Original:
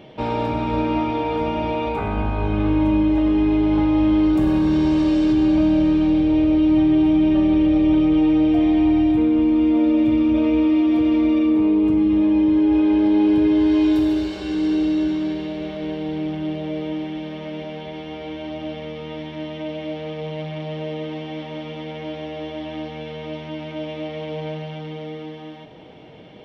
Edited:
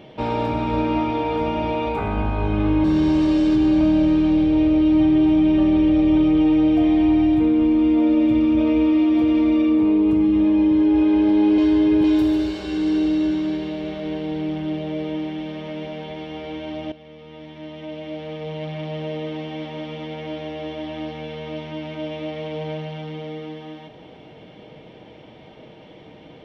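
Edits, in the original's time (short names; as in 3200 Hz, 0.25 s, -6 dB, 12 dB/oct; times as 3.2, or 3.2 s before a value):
2.84–4.61 cut
13.35–13.81 reverse
18.69–20.57 fade in, from -14.5 dB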